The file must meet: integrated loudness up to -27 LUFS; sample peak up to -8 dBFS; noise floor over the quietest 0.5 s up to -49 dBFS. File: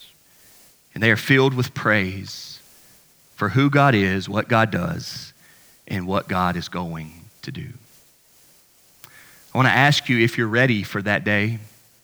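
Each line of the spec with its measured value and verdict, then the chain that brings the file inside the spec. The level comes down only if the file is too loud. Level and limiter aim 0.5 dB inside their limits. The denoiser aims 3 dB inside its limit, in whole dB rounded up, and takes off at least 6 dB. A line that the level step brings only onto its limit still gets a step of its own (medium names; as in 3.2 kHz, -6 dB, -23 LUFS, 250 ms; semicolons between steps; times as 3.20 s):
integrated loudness -20.0 LUFS: fail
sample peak -2.0 dBFS: fail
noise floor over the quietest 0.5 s -55 dBFS: pass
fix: trim -7.5 dB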